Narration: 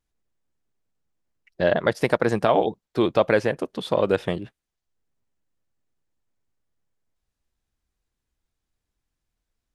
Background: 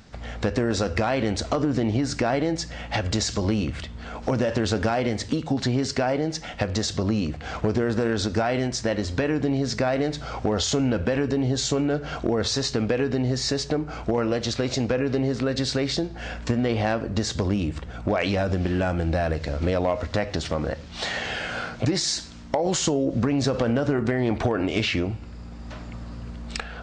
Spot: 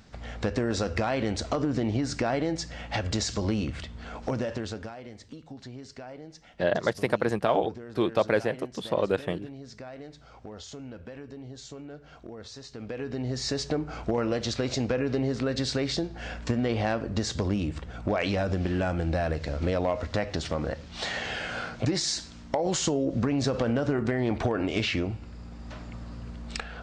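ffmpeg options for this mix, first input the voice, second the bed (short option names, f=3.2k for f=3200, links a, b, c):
-filter_complex "[0:a]adelay=5000,volume=-5dB[a];[1:a]volume=11.5dB,afade=t=out:st=4.14:d=0.8:silence=0.177828,afade=t=in:st=12.71:d=0.95:silence=0.16788[b];[a][b]amix=inputs=2:normalize=0"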